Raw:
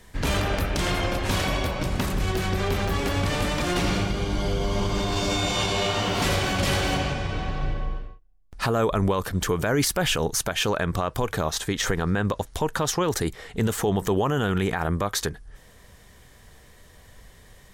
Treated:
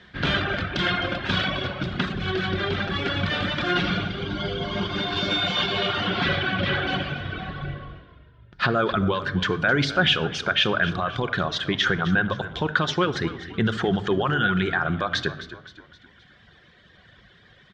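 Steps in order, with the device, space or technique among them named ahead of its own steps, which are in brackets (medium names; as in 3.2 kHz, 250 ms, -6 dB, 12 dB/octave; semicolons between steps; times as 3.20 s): reverb removal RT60 1.6 s; 6.07–6.86 s: low-pass 5.3 kHz -> 2.5 kHz 12 dB/octave; simulated room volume 2700 m³, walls furnished, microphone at 0.92 m; frequency-shifting delay pedal into a guitar cabinet (frequency-shifting echo 261 ms, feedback 46%, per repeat -49 Hz, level -14.5 dB; cabinet simulation 92–4200 Hz, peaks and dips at 500 Hz -4 dB, 910 Hz -6 dB, 1.5 kHz +9 dB, 3.4 kHz +7 dB); trim +2 dB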